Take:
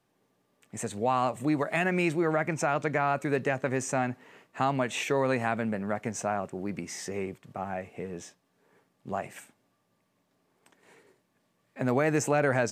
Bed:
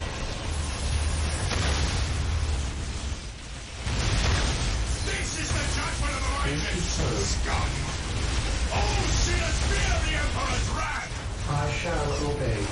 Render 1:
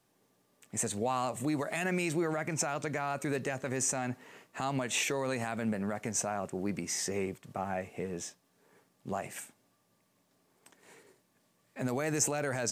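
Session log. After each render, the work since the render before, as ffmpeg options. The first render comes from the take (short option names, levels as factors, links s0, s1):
-filter_complex "[0:a]acrossover=split=4600[s0][s1];[s0]alimiter=limit=0.0708:level=0:latency=1:release=74[s2];[s1]acontrast=67[s3];[s2][s3]amix=inputs=2:normalize=0"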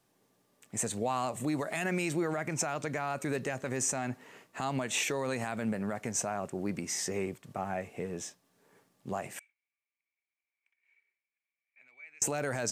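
-filter_complex "[0:a]asettb=1/sr,asplit=3[s0][s1][s2];[s0]atrim=end=9.394[s3];[s1]atrim=start=9.39:end=12.22,asetpts=PTS-STARTPTS,afade=t=in:d=0.004:c=qsin,afade=t=out:st=2.826:d=0.004:c=qsin,bandpass=f=2300:t=q:w=19[s4];[s2]atrim=start=12.216[s5];[s3][s4]acrossfade=d=0.004:c1=hsin:c2=qsin[s6];[s6][s5]acrossfade=d=0.004:c1=qsin:c2=hsin"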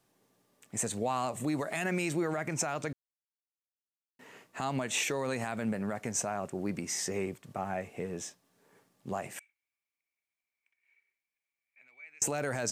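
-filter_complex "[0:a]asplit=3[s0][s1][s2];[s0]atrim=end=2.93,asetpts=PTS-STARTPTS,afade=t=out:st=2.926:d=0.004:c=hsin[s3];[s1]atrim=start=2.93:end=4.19,asetpts=PTS-STARTPTS,volume=0[s4];[s2]atrim=start=4.19,asetpts=PTS-STARTPTS,afade=t=in:d=0.004:c=hsin[s5];[s3][s4][s5]concat=n=3:v=0:a=1"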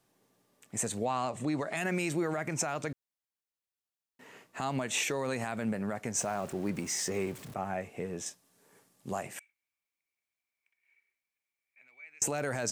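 -filter_complex "[0:a]asettb=1/sr,asplit=3[s0][s1][s2];[s0]atrim=end=1.054[s3];[s1]atrim=start=1.05:end=1.77,asetpts=PTS-STARTPTS,afade=t=in:d=0.004:c=qsin,afade=t=out:st=0.716:d=0.004:c=qsin,lowpass=6700[s4];[s2]atrim=start=1.766[s5];[s3][s4]acrossfade=d=0.004:c1=hsin:c2=qsin[s6];[s6][s5]acrossfade=d=0.004:c1=qsin:c2=hsin,asettb=1/sr,asplit=3[s7][s8][s9];[s7]atrim=end=6.174[s10];[s8]atrim=start=6.17:end=7.54,asetpts=PTS-STARTPTS,afade=t=in:d=0.004:c=qsin,afade=t=out:st=1.366:d=0.004:c=qsin,aeval=exprs='val(0)+0.5*0.00596*sgn(val(0))':c=same[s11];[s9]atrim=start=7.536[s12];[s10][s11]acrossfade=d=0.004:c1=hsin:c2=qsin[s13];[s13][s12]acrossfade=d=0.004:c1=qsin:c2=hsin,asettb=1/sr,asplit=3[s14][s15][s16];[s14]atrim=end=8.264[s17];[s15]atrim=start=8.26:end=9.23,asetpts=PTS-STARTPTS,afade=t=in:d=0.004:c=qsin,afade=t=out:st=0.966:d=0.004:c=qsin,equalizer=f=10000:w=0.52:g=8.5[s18];[s16]atrim=start=9.226[s19];[s17][s18]acrossfade=d=0.004:c1=hsin:c2=qsin[s20];[s20][s19]acrossfade=d=0.004:c1=qsin:c2=hsin"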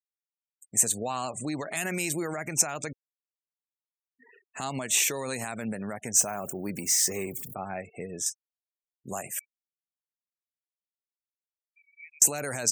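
-af "aemphasis=mode=production:type=75fm,afftfilt=real='re*gte(hypot(re,im),0.00794)':imag='im*gte(hypot(re,im),0.00794)':win_size=1024:overlap=0.75"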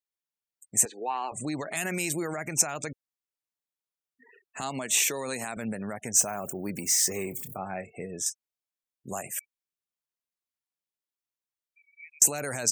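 -filter_complex "[0:a]asettb=1/sr,asplit=3[s0][s1][s2];[s0]atrim=end=0.854[s3];[s1]atrim=start=0.85:end=1.32,asetpts=PTS-STARTPTS,afade=t=in:d=0.004:c=qsin,afade=t=out:st=0.466:d=0.004:c=qsin,highpass=f=330:w=0.5412,highpass=f=330:w=1.3066,equalizer=f=360:t=q:w=4:g=4,equalizer=f=610:t=q:w=4:g=-10,equalizer=f=870:t=q:w=4:g=9,equalizer=f=1300:t=q:w=4:g=-7,equalizer=f=2000:t=q:w=4:g=5,equalizer=f=3500:t=q:w=4:g=-8,lowpass=f=3500:w=0.5412,lowpass=f=3500:w=1.3066[s4];[s2]atrim=start=1.316[s5];[s3][s4]acrossfade=d=0.004:c1=hsin:c2=qsin[s6];[s6][s5]acrossfade=d=0.004:c1=qsin:c2=hsin,asettb=1/sr,asplit=3[s7][s8][s9];[s7]atrim=end=4.624[s10];[s8]atrim=start=4.62:end=5.57,asetpts=PTS-STARTPTS,afade=t=in:d=0.004:c=qsin,afade=t=out:st=0.946:d=0.004:c=qsin,highpass=150[s11];[s9]atrim=start=5.566[s12];[s10][s11]acrossfade=d=0.004:c1=hsin:c2=qsin[s13];[s13][s12]acrossfade=d=0.004:c1=qsin:c2=hsin,asettb=1/sr,asplit=3[s14][s15][s16];[s14]atrim=end=7.224[s17];[s15]atrim=start=7.22:end=8.11,asetpts=PTS-STARTPTS,afade=t=in:d=0.004:c=qsin,afade=t=out:st=0.886:d=0.004:c=qsin,asplit=2[s18][s19];[s19]adelay=27,volume=0.211[s20];[s18][s20]amix=inputs=2:normalize=0,atrim=end_sample=39249[s21];[s16]atrim=start=8.106[s22];[s17][s21]acrossfade=d=0.004:c1=hsin:c2=qsin[s23];[s23][s22]acrossfade=d=0.004:c1=qsin:c2=hsin"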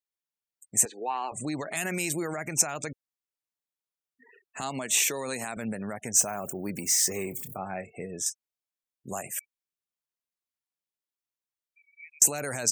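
-af anull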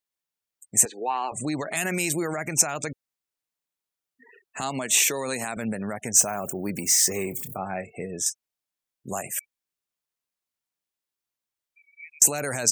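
-af "volume=1.58,alimiter=limit=0.708:level=0:latency=1"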